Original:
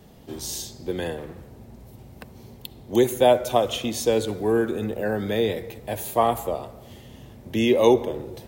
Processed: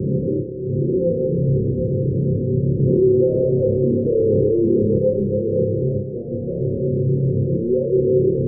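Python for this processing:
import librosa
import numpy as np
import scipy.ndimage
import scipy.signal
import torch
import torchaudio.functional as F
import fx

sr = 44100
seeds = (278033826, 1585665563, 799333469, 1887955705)

y = np.sign(x) * np.sqrt(np.mean(np.square(x)))
y = scipy.signal.sosfilt(scipy.signal.butter(2, 96.0, 'highpass', fs=sr, output='sos'), y)
y = y + 10.0 ** (-7.5 / 20.0) * np.pad(y, (int(747 * sr / 1000.0), 0))[:len(y)]
y = fx.fold_sine(y, sr, drive_db=4, ceiling_db=-18.5)
y = scipy.signal.sosfilt(scipy.signal.cheby1(6, 9, 540.0, 'lowpass', fs=sr, output='sos'), y)
y = fx.room_flutter(y, sr, wall_m=5.0, rt60_s=0.5)
y = fx.env_flatten(y, sr, amount_pct=50, at=(2.79, 4.98))
y = y * librosa.db_to_amplitude(5.5)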